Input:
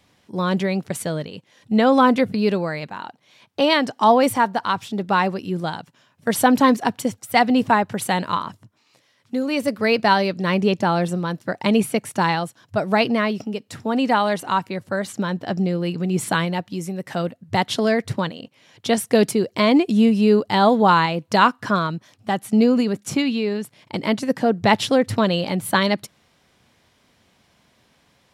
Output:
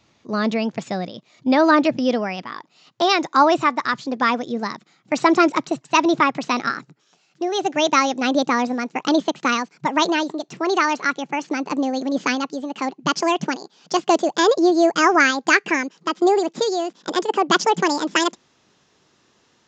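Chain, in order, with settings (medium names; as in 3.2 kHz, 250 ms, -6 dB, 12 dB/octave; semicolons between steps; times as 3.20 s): gliding tape speed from 115% -> 173%; resampled via 16 kHz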